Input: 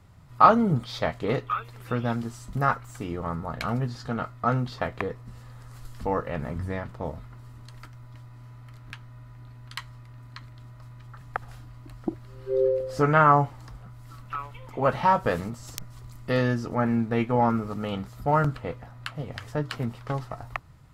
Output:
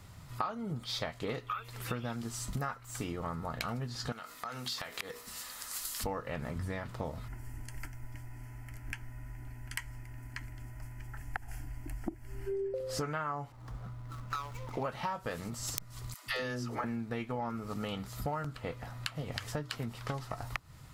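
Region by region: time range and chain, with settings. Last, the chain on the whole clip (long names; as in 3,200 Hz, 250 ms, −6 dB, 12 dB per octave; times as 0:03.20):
0:04.12–0:06.04: spectral tilt +3.5 dB per octave + mains-hum notches 60/120/180/240/300/360/420/480 Hz + downward compressor 10 to 1, threshold −39 dBFS
0:07.28–0:12.74: low-shelf EQ 160 Hz +9 dB + phaser with its sweep stopped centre 780 Hz, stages 8
0:13.52–0:14.83: running median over 15 samples + one half of a high-frequency compander decoder only
0:16.14–0:16.84: low-shelf EQ 400 Hz −6 dB + all-pass dispersion lows, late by 143 ms, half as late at 390 Hz
whole clip: high-shelf EQ 2,300 Hz +9.5 dB; downward compressor 12 to 1, threshold −34 dBFS; level +1 dB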